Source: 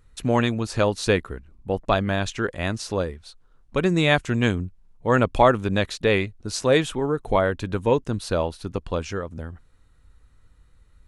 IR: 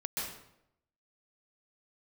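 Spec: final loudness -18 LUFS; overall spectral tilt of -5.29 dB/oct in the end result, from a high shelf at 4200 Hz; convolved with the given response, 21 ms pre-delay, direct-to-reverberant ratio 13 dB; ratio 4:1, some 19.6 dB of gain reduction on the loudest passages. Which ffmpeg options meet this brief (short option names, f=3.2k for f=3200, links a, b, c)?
-filter_complex "[0:a]highshelf=f=4.2k:g=-6,acompressor=threshold=-36dB:ratio=4,asplit=2[a][b];[1:a]atrim=start_sample=2205,adelay=21[c];[b][c]afir=irnorm=-1:irlink=0,volume=-16.5dB[d];[a][d]amix=inputs=2:normalize=0,volume=20.5dB"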